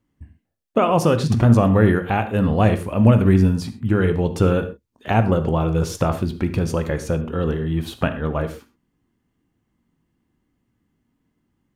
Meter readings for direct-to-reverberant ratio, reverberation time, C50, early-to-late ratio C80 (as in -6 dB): 8.5 dB, not exponential, 11.5 dB, 15.5 dB